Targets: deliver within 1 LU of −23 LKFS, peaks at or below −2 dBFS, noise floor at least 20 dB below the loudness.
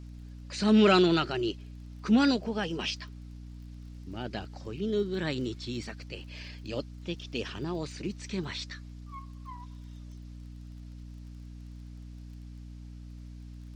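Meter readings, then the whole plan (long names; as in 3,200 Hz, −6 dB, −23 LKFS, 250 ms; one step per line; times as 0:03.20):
crackle rate 27 per second; mains hum 60 Hz; hum harmonics up to 300 Hz; level of the hum −42 dBFS; integrated loudness −29.5 LKFS; sample peak −12.0 dBFS; target loudness −23.0 LKFS
→ click removal
mains-hum notches 60/120/180/240/300 Hz
level +6.5 dB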